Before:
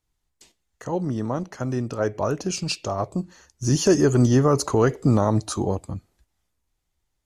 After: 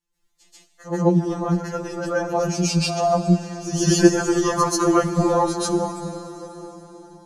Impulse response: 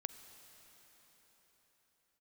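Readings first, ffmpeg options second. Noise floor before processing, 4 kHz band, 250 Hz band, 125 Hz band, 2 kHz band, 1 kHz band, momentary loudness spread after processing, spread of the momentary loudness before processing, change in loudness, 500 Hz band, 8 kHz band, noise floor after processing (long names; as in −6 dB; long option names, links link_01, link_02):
−76 dBFS, +4.0 dB, +3.0 dB, −1.0 dB, +5.0 dB, +6.0 dB, 16 LU, 13 LU, +2.0 dB, +2.0 dB, +4.0 dB, −64 dBFS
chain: -filter_complex "[0:a]asplit=2[link_01][link_02];[1:a]atrim=start_sample=2205,adelay=137[link_03];[link_02][link_03]afir=irnorm=-1:irlink=0,volume=11dB[link_04];[link_01][link_04]amix=inputs=2:normalize=0,afftfilt=real='re*2.83*eq(mod(b,8),0)':imag='im*2.83*eq(mod(b,8),0)':win_size=2048:overlap=0.75,volume=-2dB"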